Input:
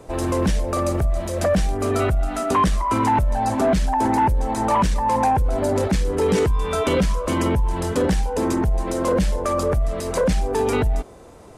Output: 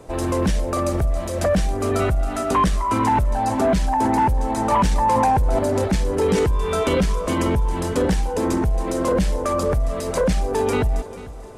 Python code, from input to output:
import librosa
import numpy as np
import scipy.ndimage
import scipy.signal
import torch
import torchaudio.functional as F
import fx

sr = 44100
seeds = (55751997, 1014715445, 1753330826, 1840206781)

y = fx.echo_feedback(x, sr, ms=443, feedback_pct=49, wet_db=-17.0)
y = fx.env_flatten(y, sr, amount_pct=70, at=(4.72, 5.59))